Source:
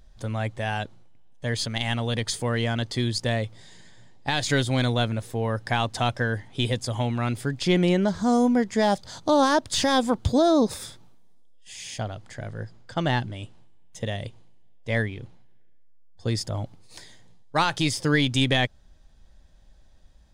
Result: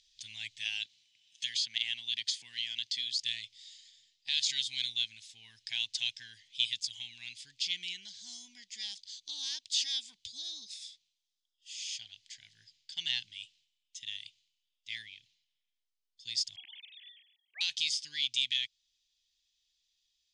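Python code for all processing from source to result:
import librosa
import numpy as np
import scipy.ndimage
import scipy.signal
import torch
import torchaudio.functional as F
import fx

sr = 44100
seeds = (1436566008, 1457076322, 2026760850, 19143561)

y = fx.chain(x, sr, fx.highpass(hz=190.0, slope=6),
    fx.high_shelf(hz=2900.0, db=-7.0),
    fx.band_squash(depth_pct=100), at=(0.65, 3.19))
y = fx.chain(y, sr, fx.sine_speech(),
    fx.sustainer(db_per_s=56.0), at=(16.56, 17.61))
y = scipy.signal.sosfilt(scipy.signal.butter(4, 6600.0, 'lowpass', fs=sr, output='sos'), y)
y = fx.rider(y, sr, range_db=10, speed_s=2.0)
y = scipy.signal.sosfilt(scipy.signal.cheby2(4, 40, 1400.0, 'highpass', fs=sr, output='sos'), y)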